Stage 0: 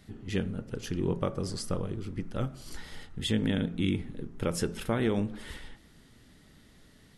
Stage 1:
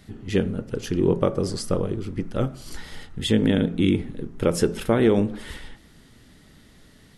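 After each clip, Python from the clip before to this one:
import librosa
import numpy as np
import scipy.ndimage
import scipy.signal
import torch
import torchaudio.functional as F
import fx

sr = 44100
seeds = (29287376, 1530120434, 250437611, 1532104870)

y = fx.dynamic_eq(x, sr, hz=410.0, q=0.85, threshold_db=-40.0, ratio=4.0, max_db=6)
y = F.gain(torch.from_numpy(y), 5.5).numpy()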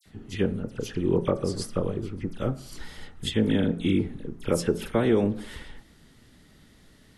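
y = fx.dispersion(x, sr, late='lows', ms=58.0, hz=2600.0)
y = F.gain(torch.from_numpy(y), -3.5).numpy()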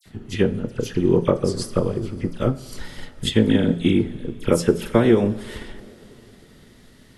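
y = fx.rev_double_slope(x, sr, seeds[0], early_s=0.26, late_s=3.7, knee_db=-18, drr_db=11.0)
y = fx.transient(y, sr, attack_db=3, sustain_db=-1)
y = F.gain(torch.from_numpy(y), 4.5).numpy()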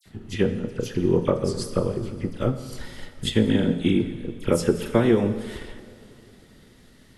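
y = fx.rev_plate(x, sr, seeds[1], rt60_s=1.5, hf_ratio=0.95, predelay_ms=0, drr_db=10.0)
y = F.gain(torch.from_numpy(y), -3.0).numpy()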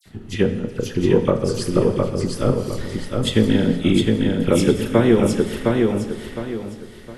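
y = fx.echo_feedback(x, sr, ms=711, feedback_pct=33, wet_db=-3)
y = F.gain(torch.from_numpy(y), 3.5).numpy()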